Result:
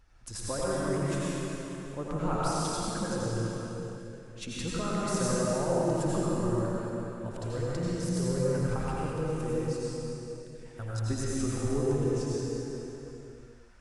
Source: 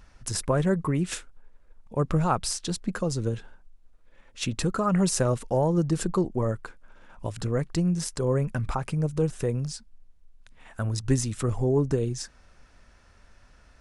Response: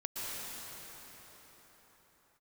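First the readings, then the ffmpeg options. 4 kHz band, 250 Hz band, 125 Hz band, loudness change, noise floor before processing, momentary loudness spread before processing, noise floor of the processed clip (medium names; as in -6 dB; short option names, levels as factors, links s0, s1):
-4.0 dB, -3.5 dB, -5.0 dB, -4.5 dB, -57 dBFS, 11 LU, -48 dBFS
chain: -filter_complex "[0:a]flanger=delay=2.3:depth=1.7:regen=-53:speed=1.2:shape=triangular[s0];[1:a]atrim=start_sample=2205,asetrate=61740,aresample=44100[s1];[s0][s1]afir=irnorm=-1:irlink=0"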